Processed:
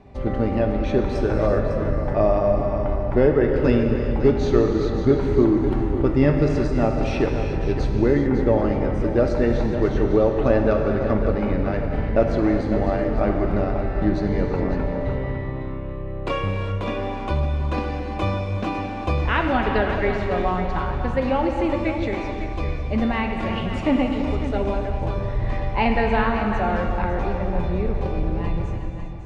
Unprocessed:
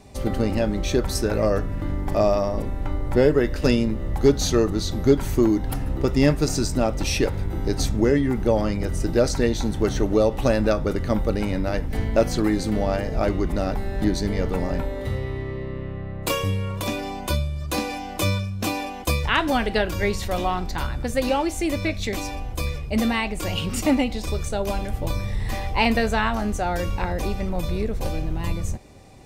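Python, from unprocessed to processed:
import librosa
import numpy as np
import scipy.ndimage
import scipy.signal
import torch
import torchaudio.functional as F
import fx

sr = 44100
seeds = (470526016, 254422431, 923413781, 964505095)

y = scipy.signal.sosfilt(scipy.signal.butter(2, 2100.0, 'lowpass', fs=sr, output='sos'), x)
y = y + 10.0 ** (-10.0 / 20.0) * np.pad(y, (int(553 * sr / 1000.0), 0))[:len(y)]
y = fx.rev_gated(y, sr, seeds[0], gate_ms=430, shape='flat', drr_db=3.0)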